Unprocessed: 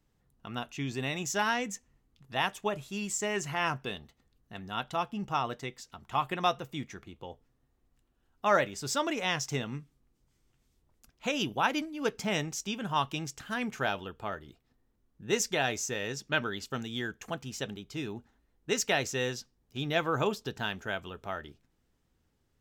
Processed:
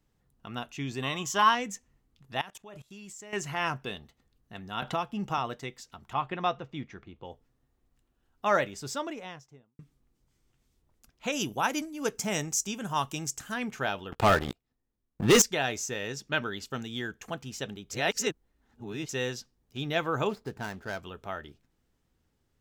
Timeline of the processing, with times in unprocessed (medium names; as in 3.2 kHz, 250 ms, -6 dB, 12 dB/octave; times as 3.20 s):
1.02–1.55 s: small resonant body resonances 1.1/3.1 kHz, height 18 dB, ringing for 30 ms
2.41–3.33 s: level held to a coarse grid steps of 23 dB
4.82–5.38 s: three bands compressed up and down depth 70%
6.13–7.25 s: distance through air 180 m
8.56–9.79 s: studio fade out
11.32–13.52 s: resonant high shelf 5.2 kHz +8.5 dB, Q 1.5
14.12–15.42 s: waveshaping leveller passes 5
17.91–19.09 s: reverse
20.29–21.03 s: median filter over 15 samples